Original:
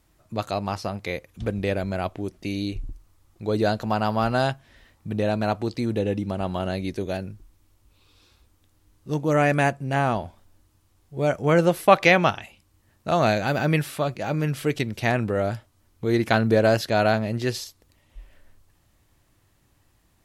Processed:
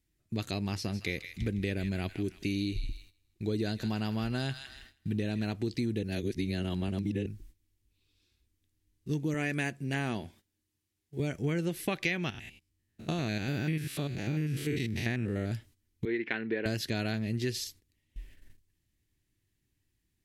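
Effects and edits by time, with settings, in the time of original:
0:00.74–0:05.46: delay with a high-pass on its return 160 ms, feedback 41%, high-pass 1,400 Hz, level −10.5 dB
0:06.03–0:07.26: reverse
0:09.34–0:11.20: high-pass filter 220 Hz 6 dB per octave
0:12.30–0:15.52: spectrum averaged block by block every 100 ms
0:16.05–0:16.66: loudspeaker in its box 420–2,700 Hz, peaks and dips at 650 Hz −7 dB, 1,200 Hz −4 dB, 1,900 Hz +3 dB
whole clip: noise gate −50 dBFS, range −14 dB; flat-topped bell 840 Hz −13 dB; downward compressor 6 to 1, threshold −28 dBFS

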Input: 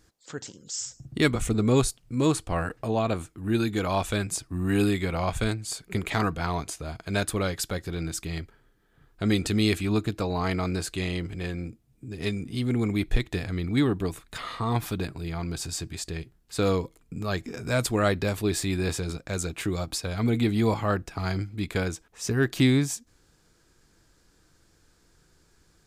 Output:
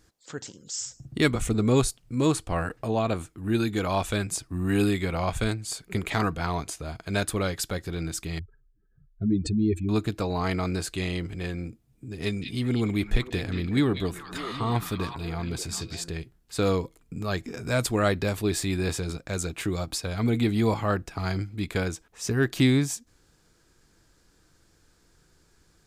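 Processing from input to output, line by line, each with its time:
0:08.39–0:09.89: expanding power law on the bin magnitudes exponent 2.6
0:12.22–0:16.11: echo through a band-pass that steps 195 ms, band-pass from 3,300 Hz, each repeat −1.4 octaves, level −3 dB

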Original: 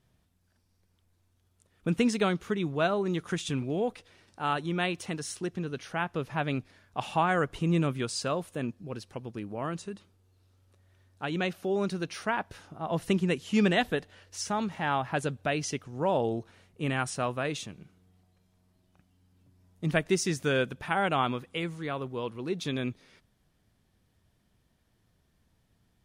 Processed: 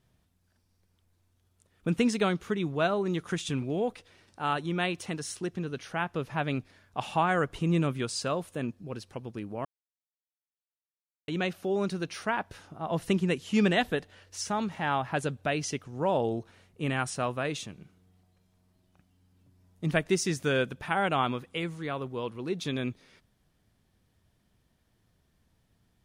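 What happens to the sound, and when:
0:09.65–0:11.28: silence

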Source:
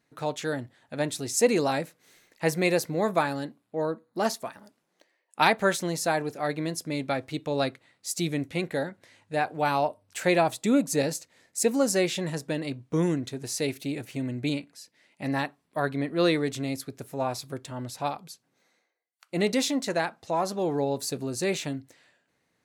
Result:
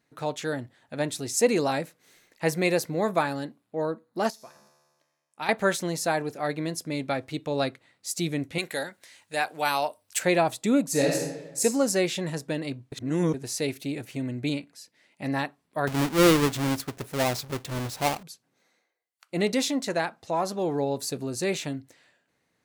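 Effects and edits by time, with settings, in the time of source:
0:04.30–0:05.49: tuned comb filter 73 Hz, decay 1.6 s, mix 80%
0:08.58–0:10.19: spectral tilt +3.5 dB per octave
0:10.89–0:11.63: thrown reverb, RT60 1.1 s, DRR −1 dB
0:12.92–0:13.34: reverse
0:15.87–0:18.23: each half-wave held at its own peak

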